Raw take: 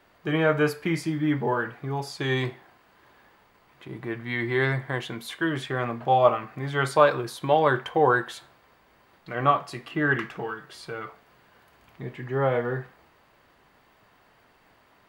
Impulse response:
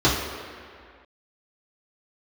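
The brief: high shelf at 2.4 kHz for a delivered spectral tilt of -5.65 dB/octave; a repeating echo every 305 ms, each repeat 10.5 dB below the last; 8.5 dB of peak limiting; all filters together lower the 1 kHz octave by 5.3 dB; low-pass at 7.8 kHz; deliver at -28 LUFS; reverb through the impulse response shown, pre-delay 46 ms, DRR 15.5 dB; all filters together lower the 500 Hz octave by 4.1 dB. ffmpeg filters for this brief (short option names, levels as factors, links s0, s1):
-filter_complex "[0:a]lowpass=7800,equalizer=f=500:t=o:g=-3.5,equalizer=f=1000:t=o:g=-5,highshelf=f=2400:g=-4.5,alimiter=limit=0.133:level=0:latency=1,aecho=1:1:305|610|915:0.299|0.0896|0.0269,asplit=2[s0][s1];[1:a]atrim=start_sample=2205,adelay=46[s2];[s1][s2]afir=irnorm=-1:irlink=0,volume=0.0178[s3];[s0][s3]amix=inputs=2:normalize=0,volume=1.26"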